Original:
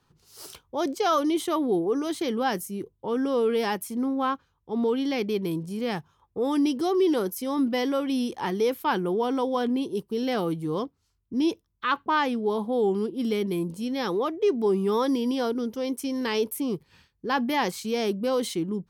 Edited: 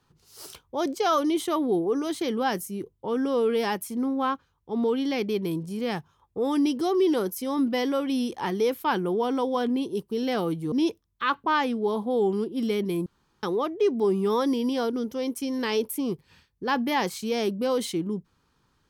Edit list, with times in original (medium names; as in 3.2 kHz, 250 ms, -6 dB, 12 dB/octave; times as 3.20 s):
10.72–11.34 s: delete
13.68–14.05 s: room tone